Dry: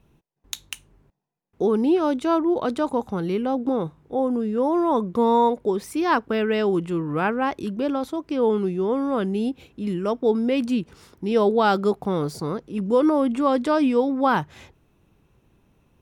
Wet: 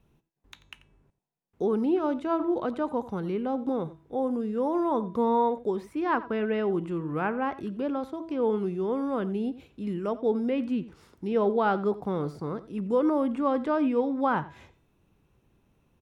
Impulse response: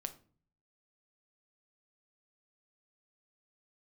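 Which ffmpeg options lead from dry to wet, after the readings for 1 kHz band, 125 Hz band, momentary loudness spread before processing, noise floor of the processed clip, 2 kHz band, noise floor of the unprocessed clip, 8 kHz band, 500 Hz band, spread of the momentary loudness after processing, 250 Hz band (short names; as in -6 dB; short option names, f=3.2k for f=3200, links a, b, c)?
-5.5 dB, -5.5 dB, 9 LU, -69 dBFS, -6.5 dB, -64 dBFS, n/a, -5.5 dB, 8 LU, -5.5 dB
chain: -filter_complex "[0:a]bandreject=f=327.2:t=h:w=4,bandreject=f=654.4:t=h:w=4,bandreject=f=981.6:t=h:w=4,bandreject=f=1.3088k:t=h:w=4,bandreject=f=1.636k:t=h:w=4,bandreject=f=1.9632k:t=h:w=4,bandreject=f=2.2904k:t=h:w=4,bandreject=f=2.6176k:t=h:w=4,bandreject=f=2.9448k:t=h:w=4,bandreject=f=3.272k:t=h:w=4,bandreject=f=3.5992k:t=h:w=4,bandreject=f=3.9264k:t=h:w=4,bandreject=f=4.2536k:t=h:w=4,bandreject=f=4.5808k:t=h:w=4,bandreject=f=4.908k:t=h:w=4,bandreject=f=5.2352k:t=h:w=4,bandreject=f=5.5624k:t=h:w=4,bandreject=f=5.8896k:t=h:w=4,bandreject=f=6.2168k:t=h:w=4,bandreject=f=6.544k:t=h:w=4,bandreject=f=6.8712k:t=h:w=4,bandreject=f=7.1984k:t=h:w=4,bandreject=f=7.5256k:t=h:w=4,bandreject=f=7.8528k:t=h:w=4,bandreject=f=8.18k:t=h:w=4,bandreject=f=8.5072k:t=h:w=4,bandreject=f=8.8344k:t=h:w=4,bandreject=f=9.1616k:t=h:w=4,bandreject=f=9.4888k:t=h:w=4,acrossover=split=690|2700[a][b][c];[c]acompressor=threshold=-56dB:ratio=6[d];[a][b][d]amix=inputs=3:normalize=0,asplit=2[e][f];[f]adelay=87.46,volume=-17dB,highshelf=f=4k:g=-1.97[g];[e][g]amix=inputs=2:normalize=0,volume=-5.5dB"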